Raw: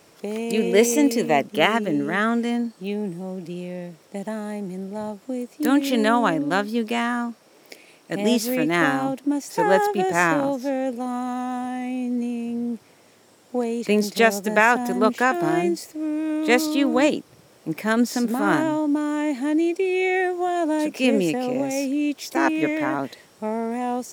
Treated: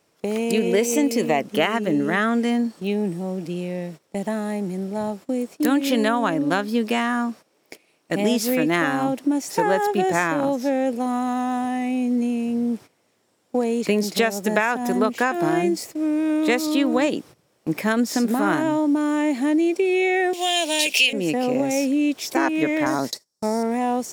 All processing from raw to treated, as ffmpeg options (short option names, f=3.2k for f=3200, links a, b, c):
-filter_complex "[0:a]asettb=1/sr,asplit=3[a][b][c];[a]atrim=end=20.334[d];[b]atrim=start=20.33:end=21.13,asetpts=PTS-STARTPTS,afade=t=in:d=0.004:c=qsin,afade=t=out:st=0.796:d=0.004:c=qsin,highpass=540,highshelf=f=2k:t=q:w=3:g=13[e];[c]atrim=start=21.126[f];[d][e]acrossfade=d=0.004:c1=hsin:c2=qsin[g];[g][f]acrossfade=d=0.004:c1=qsin:c2=hsin,asettb=1/sr,asplit=3[h][i][j];[h]atrim=end=22.864[k];[i]atrim=start=22.86:end=23.63,asetpts=PTS-STARTPTS,afade=t=in:d=0.004:c=qsin,afade=t=out:st=0.766:d=0.004:c=qsin,highshelf=f=3.8k:t=q:w=3:g=10.5,agate=range=-22dB:threshold=-38dB:ratio=16:release=100:detection=peak[l];[j]atrim=start=23.626[m];[k][l]acrossfade=d=0.004:c1=hsin:c2=qsin[n];[n][m]acrossfade=d=0.004:c1=qsin:c2=hsin,agate=range=-16dB:threshold=-41dB:ratio=16:detection=peak,acompressor=threshold=-20dB:ratio=6,volume=4dB"